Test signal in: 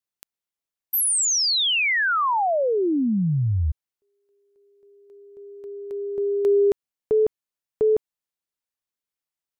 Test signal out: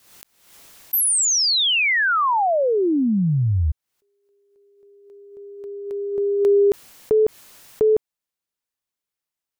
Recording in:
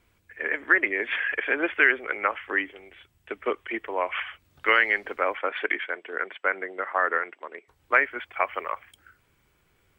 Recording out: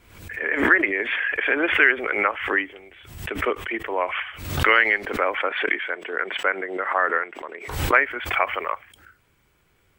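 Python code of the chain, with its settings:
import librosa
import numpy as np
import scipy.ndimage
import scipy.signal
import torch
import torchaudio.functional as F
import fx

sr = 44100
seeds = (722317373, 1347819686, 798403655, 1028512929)

y = fx.pre_swell(x, sr, db_per_s=72.0)
y = y * 10.0 ** (2.5 / 20.0)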